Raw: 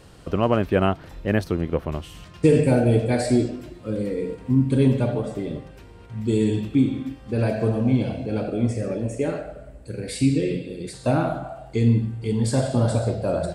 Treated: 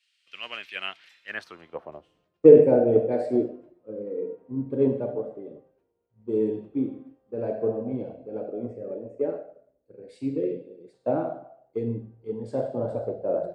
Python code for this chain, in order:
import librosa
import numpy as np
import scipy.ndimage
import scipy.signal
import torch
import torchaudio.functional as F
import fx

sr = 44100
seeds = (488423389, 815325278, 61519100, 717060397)

y = fx.filter_sweep_bandpass(x, sr, from_hz=2300.0, to_hz=480.0, start_s=1.03, end_s=2.15, q=1.8)
y = fx.band_widen(y, sr, depth_pct=100)
y = y * 10.0 ** (-1.0 / 20.0)